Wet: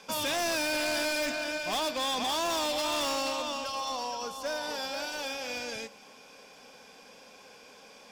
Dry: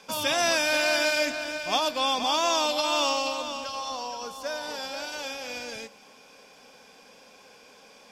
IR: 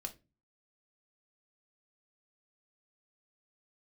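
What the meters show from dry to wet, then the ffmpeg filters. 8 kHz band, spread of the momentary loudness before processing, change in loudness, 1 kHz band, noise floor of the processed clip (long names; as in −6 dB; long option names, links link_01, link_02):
−3.0 dB, 12 LU, −4.5 dB, −4.5 dB, −54 dBFS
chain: -af "asoftclip=type=hard:threshold=-28dB"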